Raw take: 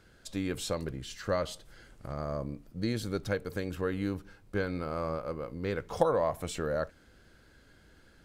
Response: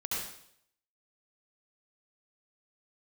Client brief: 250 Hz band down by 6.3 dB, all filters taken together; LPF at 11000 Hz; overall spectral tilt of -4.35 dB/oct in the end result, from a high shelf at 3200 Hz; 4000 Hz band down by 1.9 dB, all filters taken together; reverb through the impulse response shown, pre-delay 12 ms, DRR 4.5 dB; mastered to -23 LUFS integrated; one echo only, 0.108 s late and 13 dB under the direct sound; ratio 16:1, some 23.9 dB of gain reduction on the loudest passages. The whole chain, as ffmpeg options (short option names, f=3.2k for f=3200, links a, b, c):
-filter_complex "[0:a]lowpass=11k,equalizer=f=250:t=o:g=-9,highshelf=f=3.2k:g=6.5,equalizer=f=4k:t=o:g=-7,acompressor=threshold=-46dB:ratio=16,aecho=1:1:108:0.224,asplit=2[a][b];[1:a]atrim=start_sample=2205,adelay=12[c];[b][c]afir=irnorm=-1:irlink=0,volume=-9dB[d];[a][d]amix=inputs=2:normalize=0,volume=27dB"